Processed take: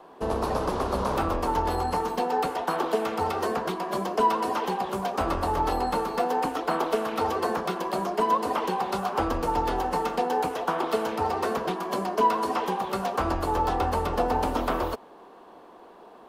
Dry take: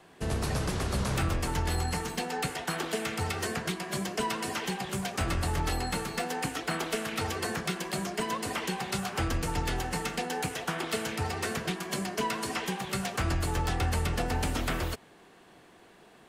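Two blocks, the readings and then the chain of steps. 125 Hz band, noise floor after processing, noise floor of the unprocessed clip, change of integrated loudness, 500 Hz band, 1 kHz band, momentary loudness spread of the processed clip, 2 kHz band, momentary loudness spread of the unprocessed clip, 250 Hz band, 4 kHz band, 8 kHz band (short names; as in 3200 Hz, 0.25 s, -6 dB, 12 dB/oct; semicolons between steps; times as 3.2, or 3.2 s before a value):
-4.5 dB, -49 dBFS, -56 dBFS, +5.0 dB, +8.5 dB, +10.0 dB, 5 LU, -1.5 dB, 3 LU, +3.5 dB, -3.0 dB, -7.0 dB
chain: graphic EQ 125/250/500/1000/2000/8000 Hz -11/+5/+7/+12/-7/-9 dB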